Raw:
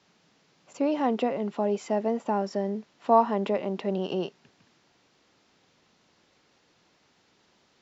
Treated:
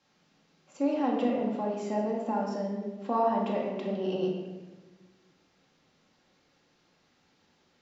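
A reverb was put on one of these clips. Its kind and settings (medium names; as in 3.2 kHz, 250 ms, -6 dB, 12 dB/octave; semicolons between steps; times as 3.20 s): simulated room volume 770 m³, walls mixed, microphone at 2.2 m; trim -8 dB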